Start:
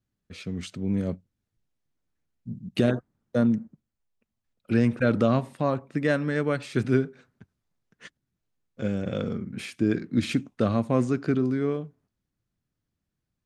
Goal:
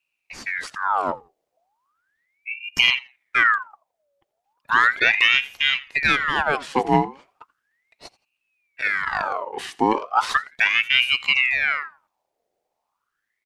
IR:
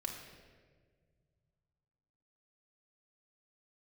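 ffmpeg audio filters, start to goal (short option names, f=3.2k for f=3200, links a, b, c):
-af "aecho=1:1:84|168:0.0794|0.0191,aeval=exprs='val(0)*sin(2*PI*1600*n/s+1600*0.65/0.36*sin(2*PI*0.36*n/s))':c=same,volume=7dB"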